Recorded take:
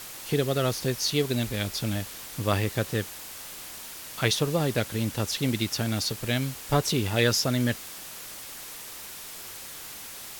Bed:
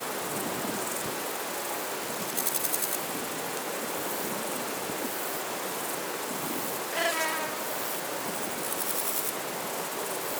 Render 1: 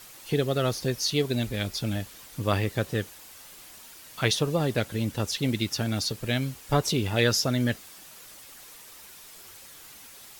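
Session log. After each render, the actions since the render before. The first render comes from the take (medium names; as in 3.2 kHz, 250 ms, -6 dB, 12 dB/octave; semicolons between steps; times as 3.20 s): noise reduction 8 dB, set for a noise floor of -41 dBFS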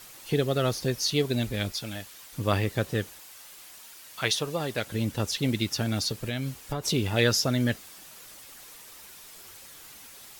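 1.72–2.33 s: bass shelf 470 Hz -10.5 dB; 3.19–4.87 s: bass shelf 430 Hz -9 dB; 6.16–6.86 s: compression 12:1, threshold -26 dBFS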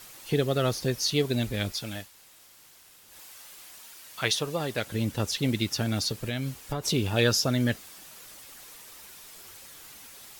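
2.07–3.11 s: room tone, crossfade 0.16 s; 7.03–7.49 s: band-stop 2 kHz, Q 7.6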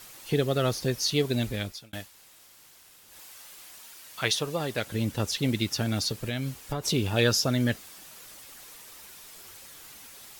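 1.50–1.93 s: fade out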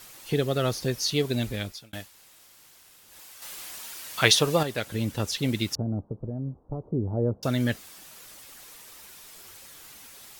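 3.42–4.63 s: gain +7.5 dB; 5.75–7.43 s: Bessel low-pass 540 Hz, order 8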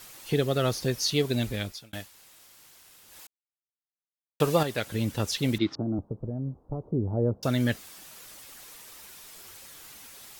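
3.27–4.40 s: mute; 5.58–5.99 s: cabinet simulation 130–4000 Hz, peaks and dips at 320 Hz +9 dB, 490 Hz -4 dB, 1.2 kHz +5 dB, 2.7 kHz -8 dB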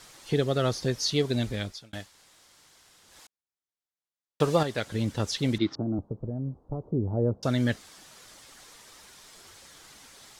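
low-pass 7.8 kHz 12 dB/octave; peaking EQ 2.6 kHz -4.5 dB 0.35 oct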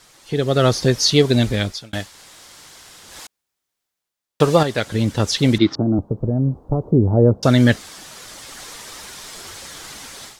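level rider gain up to 15 dB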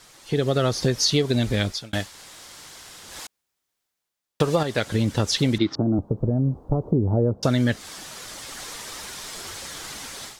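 compression 4:1, threshold -18 dBFS, peak gain reduction 9 dB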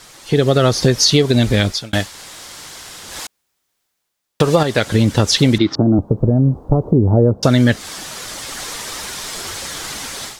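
trim +8.5 dB; peak limiter -2 dBFS, peak gain reduction 3 dB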